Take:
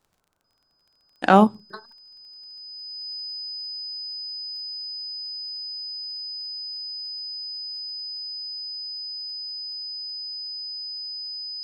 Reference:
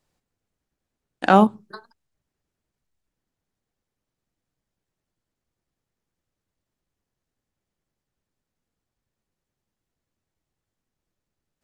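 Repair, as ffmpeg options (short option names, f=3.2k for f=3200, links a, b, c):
-af "adeclick=t=4,bandreject=f=5k:w=30,agate=range=-21dB:threshold=-55dB"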